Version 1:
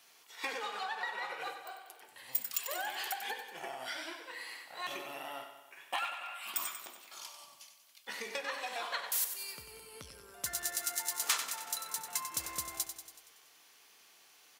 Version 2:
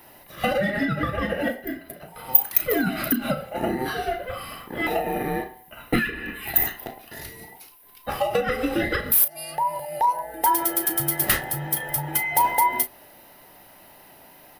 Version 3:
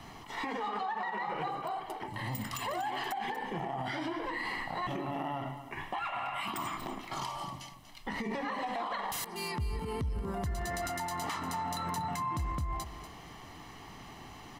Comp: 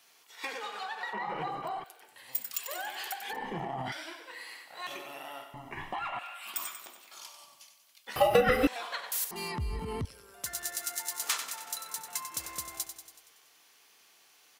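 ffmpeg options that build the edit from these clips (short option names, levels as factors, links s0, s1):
-filter_complex "[2:a]asplit=4[s0][s1][s2][s3];[0:a]asplit=6[s4][s5][s6][s7][s8][s9];[s4]atrim=end=1.132[s10];[s0]atrim=start=1.128:end=1.842[s11];[s5]atrim=start=1.838:end=3.332[s12];[s1]atrim=start=3.328:end=3.922[s13];[s6]atrim=start=3.918:end=5.542[s14];[s2]atrim=start=5.538:end=6.192[s15];[s7]atrim=start=6.188:end=8.162[s16];[1:a]atrim=start=8.158:end=8.672[s17];[s8]atrim=start=8.668:end=9.312[s18];[s3]atrim=start=9.308:end=10.052[s19];[s9]atrim=start=10.048[s20];[s10][s11]acrossfade=d=0.004:c1=hsin:c2=hsin[s21];[s21][s12]acrossfade=d=0.004:c1=hsin:c2=hsin[s22];[s22][s13]acrossfade=d=0.004:c1=hsin:c2=hsin[s23];[s23][s14]acrossfade=d=0.004:c1=hsin:c2=hsin[s24];[s24][s15]acrossfade=d=0.004:c1=hsin:c2=hsin[s25];[s25][s16]acrossfade=d=0.004:c1=hsin:c2=hsin[s26];[s26][s17]acrossfade=d=0.004:c1=hsin:c2=hsin[s27];[s27][s18]acrossfade=d=0.004:c1=hsin:c2=hsin[s28];[s28][s19]acrossfade=d=0.004:c1=hsin:c2=hsin[s29];[s29][s20]acrossfade=d=0.004:c1=hsin:c2=hsin"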